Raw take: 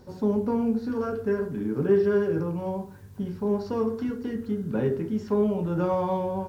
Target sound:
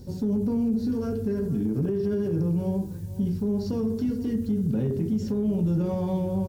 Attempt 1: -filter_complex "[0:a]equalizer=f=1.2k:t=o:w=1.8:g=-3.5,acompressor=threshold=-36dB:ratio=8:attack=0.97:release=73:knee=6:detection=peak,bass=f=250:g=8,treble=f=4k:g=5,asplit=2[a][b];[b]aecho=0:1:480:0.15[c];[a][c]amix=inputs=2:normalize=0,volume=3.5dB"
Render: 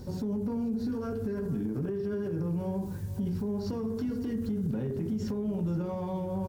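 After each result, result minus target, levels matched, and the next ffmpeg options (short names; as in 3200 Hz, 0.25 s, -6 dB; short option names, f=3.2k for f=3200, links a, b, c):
compressor: peak gain reduction +8 dB; 1000 Hz band +5.0 dB
-filter_complex "[0:a]equalizer=f=1.2k:t=o:w=1.8:g=-3.5,acompressor=threshold=-28.5dB:ratio=8:attack=0.97:release=73:knee=6:detection=peak,bass=f=250:g=8,treble=f=4k:g=5,asplit=2[a][b];[b]aecho=0:1:480:0.15[c];[a][c]amix=inputs=2:normalize=0,volume=3.5dB"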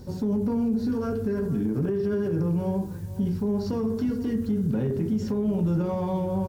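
1000 Hz band +5.0 dB
-filter_complex "[0:a]equalizer=f=1.2k:t=o:w=1.8:g=-12.5,acompressor=threshold=-28.5dB:ratio=8:attack=0.97:release=73:knee=6:detection=peak,bass=f=250:g=8,treble=f=4k:g=5,asplit=2[a][b];[b]aecho=0:1:480:0.15[c];[a][c]amix=inputs=2:normalize=0,volume=3.5dB"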